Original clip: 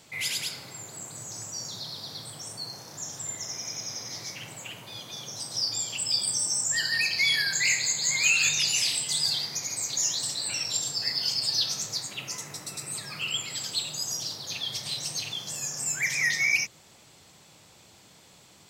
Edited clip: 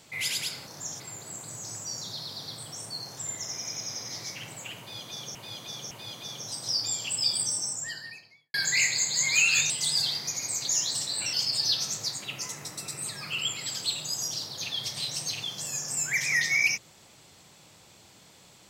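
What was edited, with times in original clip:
0:02.84–0:03.17: move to 0:00.67
0:04.79–0:05.35: repeat, 3 plays
0:06.22–0:07.42: fade out and dull
0:08.58–0:08.98: remove
0:10.61–0:11.22: remove

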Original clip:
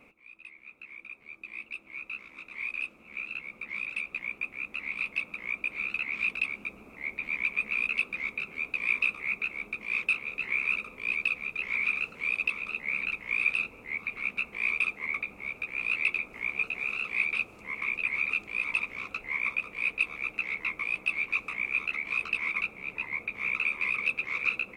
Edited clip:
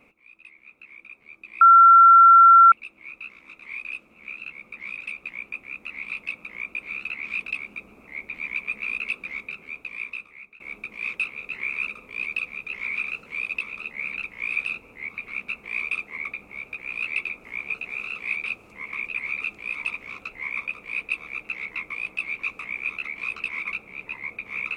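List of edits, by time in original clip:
0:01.61: insert tone 1,360 Hz −8 dBFS 1.11 s
0:08.22–0:09.49: fade out, to −21.5 dB

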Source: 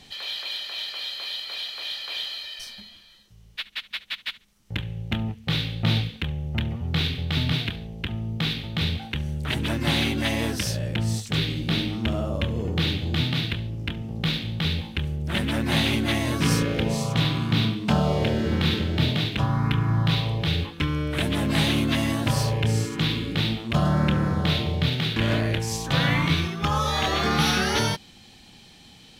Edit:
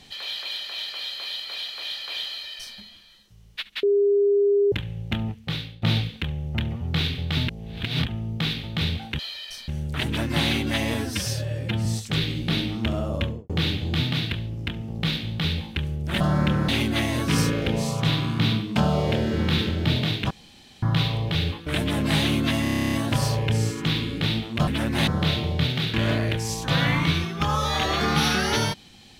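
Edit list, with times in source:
0:02.28–0:02.77: duplicate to 0:09.19
0:03.83–0:04.72: beep over 404 Hz −16 dBFS
0:05.31–0:05.82: fade out, to −18 dB
0:07.48–0:08.05: reverse
0:10.45–0:11.06: time-stretch 1.5×
0:12.42–0:12.70: fade out and dull
0:15.41–0:15.81: swap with 0:23.82–0:24.30
0:19.43–0:19.95: fill with room tone
0:20.79–0:21.11: remove
0:22.07: stutter 0.03 s, 11 plays

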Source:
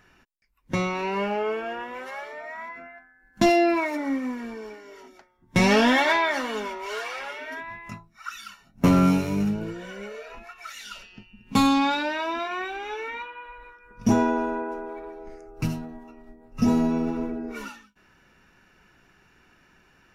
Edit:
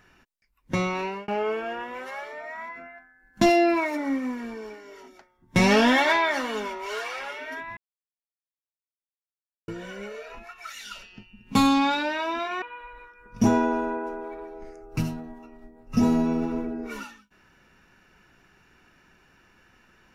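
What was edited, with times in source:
0:01.00–0:01.28: fade out
0:07.77–0:09.68: silence
0:12.62–0:13.27: remove

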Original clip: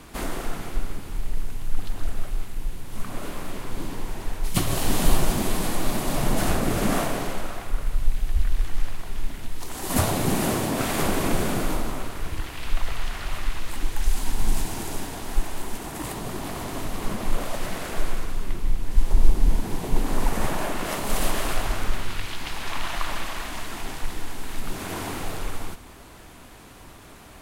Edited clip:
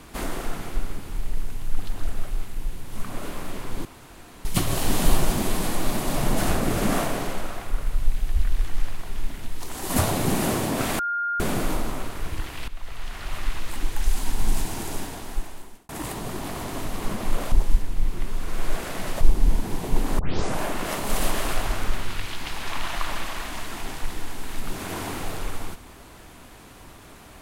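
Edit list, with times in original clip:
0:03.85–0:04.45: fill with room tone
0:10.99–0:11.40: beep over 1,410 Hz −23 dBFS
0:12.68–0:13.47: fade in, from −15.5 dB
0:15.00–0:15.89: fade out
0:17.52–0:19.21: reverse
0:20.19: tape start 0.41 s

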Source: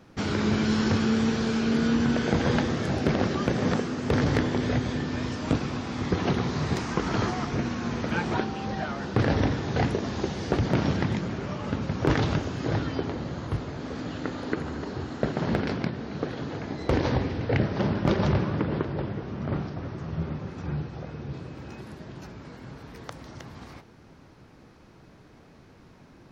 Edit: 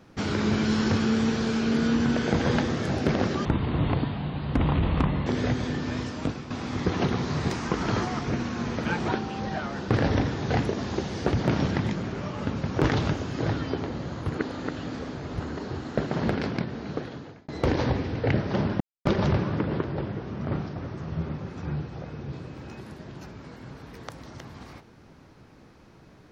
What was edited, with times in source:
0:03.45–0:04.52: play speed 59%
0:05.23–0:05.76: fade out, to −9.5 dB
0:13.55–0:14.65: reverse
0:16.15–0:16.74: fade out
0:18.06: splice in silence 0.25 s

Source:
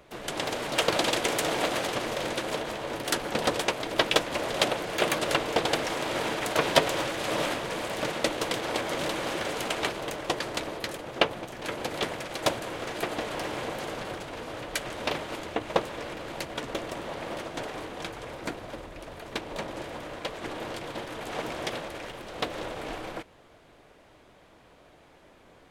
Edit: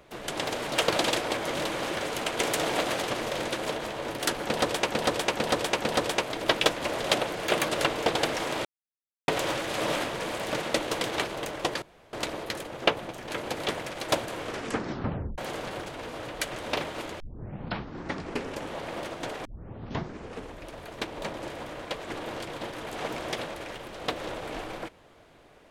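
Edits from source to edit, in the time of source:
0:03.29–0:03.74: repeat, 4 plays
0:06.15–0:06.78: silence
0:08.66–0:09.81: move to 0:01.22
0:10.47: splice in room tone 0.31 s
0:12.77: tape stop 0.95 s
0:15.54: tape start 1.56 s
0:17.79: tape start 1.15 s

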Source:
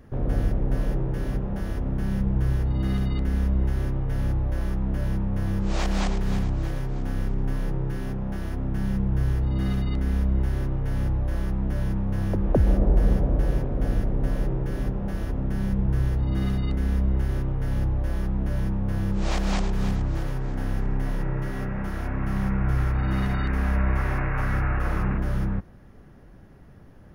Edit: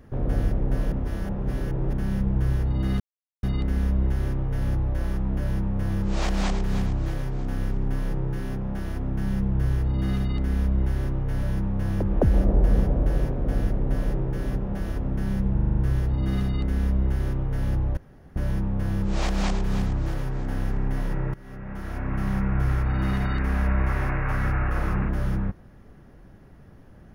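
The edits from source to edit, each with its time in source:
0:00.92–0:01.93: reverse
0:03.00: splice in silence 0.43 s
0:11.00–0:11.76: remove
0:15.87: stutter 0.04 s, 7 plays
0:18.06–0:18.45: fill with room tone
0:21.43–0:22.23: fade in, from −20.5 dB

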